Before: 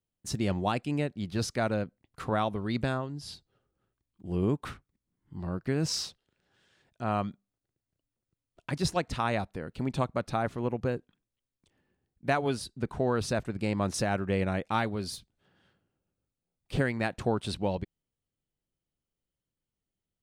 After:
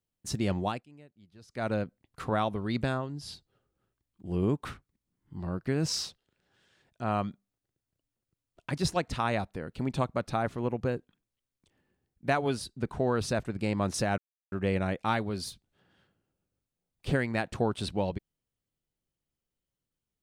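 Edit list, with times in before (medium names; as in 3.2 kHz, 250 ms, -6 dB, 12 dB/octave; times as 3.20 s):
0.62–1.72 s: dip -23.5 dB, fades 0.24 s
14.18 s: insert silence 0.34 s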